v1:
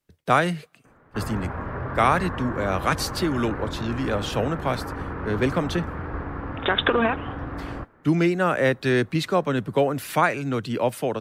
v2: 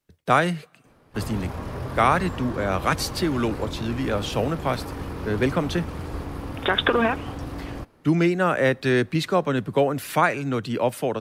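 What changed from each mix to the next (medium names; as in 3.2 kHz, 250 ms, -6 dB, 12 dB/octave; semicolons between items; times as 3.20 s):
speech: send +8.0 dB; background: remove resonant low-pass 1.6 kHz, resonance Q 2.4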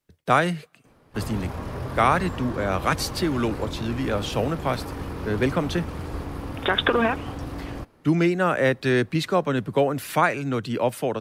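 speech: send -7.0 dB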